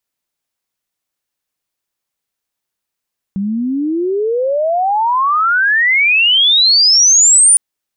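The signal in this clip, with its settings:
glide logarithmic 190 Hz → 9,600 Hz −15 dBFS → −4.5 dBFS 4.21 s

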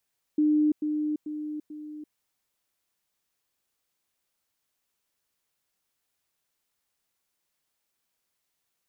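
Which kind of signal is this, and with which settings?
level staircase 302 Hz −19 dBFS, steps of −6 dB, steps 4, 0.34 s 0.10 s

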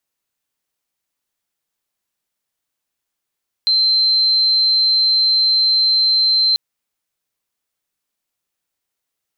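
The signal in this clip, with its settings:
tone sine 4,110 Hz −11.5 dBFS 2.89 s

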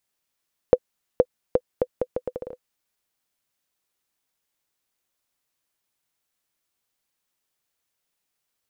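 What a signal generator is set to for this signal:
bouncing ball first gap 0.47 s, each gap 0.75, 502 Hz, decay 53 ms −2 dBFS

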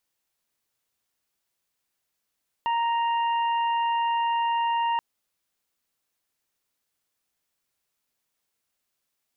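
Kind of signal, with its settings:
steady harmonic partials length 2.33 s, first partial 932 Hz, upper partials −15/−13.5 dB, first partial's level −22 dB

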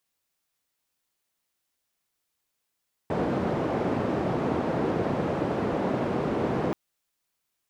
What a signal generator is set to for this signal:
band-limited noise 120–510 Hz, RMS −27 dBFS 3.63 s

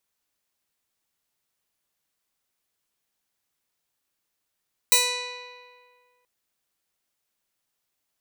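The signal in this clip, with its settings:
Karplus-Strong string B4, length 1.33 s, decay 1.89 s, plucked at 0.3, bright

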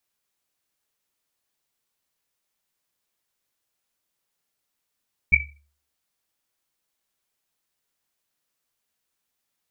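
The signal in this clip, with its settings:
drum after Risset, pitch 72 Hz, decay 0.49 s, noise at 2,300 Hz, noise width 110 Hz, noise 75%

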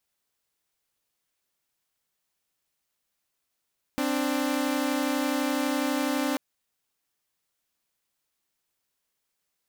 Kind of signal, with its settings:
held notes C4/D4 saw, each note −25 dBFS 2.39 s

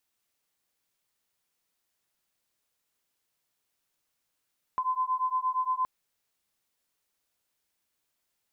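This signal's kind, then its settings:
two tones that beat 1,020 Hz, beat 8.6 Hz, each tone −29 dBFS 1.07 s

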